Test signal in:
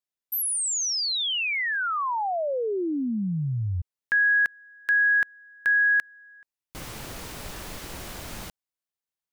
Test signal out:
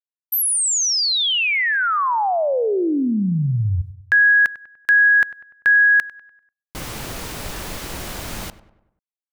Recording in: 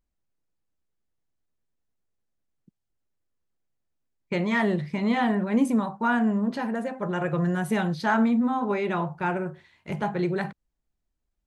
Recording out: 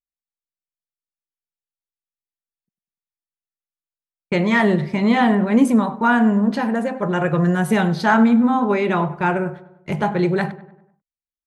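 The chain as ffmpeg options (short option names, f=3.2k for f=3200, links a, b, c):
-filter_complex "[0:a]agate=range=-33dB:threshold=-42dB:ratio=3:release=101:detection=rms,asplit=2[a][b];[b]adelay=98,lowpass=f=2.2k:p=1,volume=-16dB,asplit=2[c][d];[d]adelay=98,lowpass=f=2.2k:p=1,volume=0.51,asplit=2[e][f];[f]adelay=98,lowpass=f=2.2k:p=1,volume=0.51,asplit=2[g][h];[h]adelay=98,lowpass=f=2.2k:p=1,volume=0.51,asplit=2[i][j];[j]adelay=98,lowpass=f=2.2k:p=1,volume=0.51[k];[c][e][g][i][k]amix=inputs=5:normalize=0[l];[a][l]amix=inputs=2:normalize=0,volume=7.5dB"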